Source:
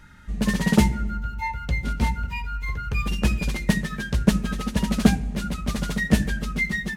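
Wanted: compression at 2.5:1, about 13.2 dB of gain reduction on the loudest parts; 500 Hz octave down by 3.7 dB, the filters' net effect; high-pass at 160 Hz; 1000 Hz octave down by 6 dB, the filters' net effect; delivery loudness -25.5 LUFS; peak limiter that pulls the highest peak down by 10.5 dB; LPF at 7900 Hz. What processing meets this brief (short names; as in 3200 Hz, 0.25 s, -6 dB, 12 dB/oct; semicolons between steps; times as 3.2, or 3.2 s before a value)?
HPF 160 Hz; LPF 7900 Hz; bell 500 Hz -3 dB; bell 1000 Hz -7 dB; compressor 2.5:1, threshold -34 dBFS; gain +12.5 dB; limiter -15.5 dBFS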